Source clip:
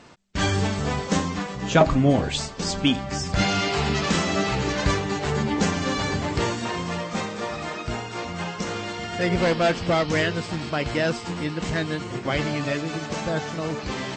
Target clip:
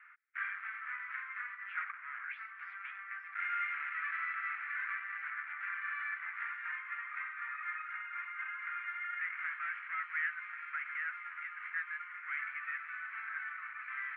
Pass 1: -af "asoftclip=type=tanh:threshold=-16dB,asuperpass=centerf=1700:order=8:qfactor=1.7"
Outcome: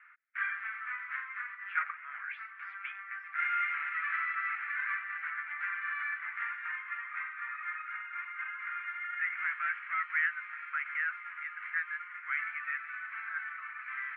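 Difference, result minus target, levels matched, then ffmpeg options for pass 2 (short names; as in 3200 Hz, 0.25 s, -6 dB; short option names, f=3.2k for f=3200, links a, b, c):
soft clip: distortion -8 dB
-af "asoftclip=type=tanh:threshold=-26dB,asuperpass=centerf=1700:order=8:qfactor=1.7"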